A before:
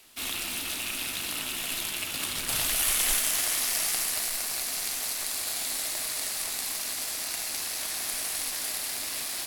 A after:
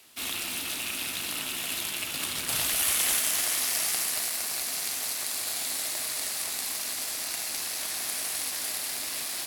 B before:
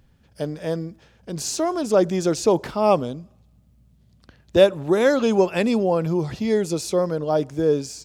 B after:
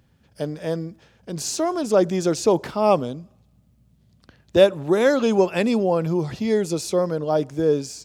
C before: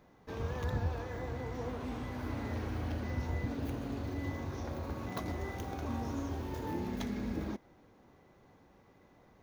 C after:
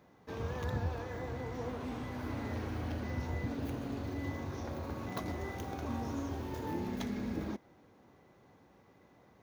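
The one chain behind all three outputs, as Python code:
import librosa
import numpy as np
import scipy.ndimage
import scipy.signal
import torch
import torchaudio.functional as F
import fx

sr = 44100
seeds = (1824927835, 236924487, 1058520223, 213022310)

y = scipy.signal.sosfilt(scipy.signal.butter(2, 70.0, 'highpass', fs=sr, output='sos'), x)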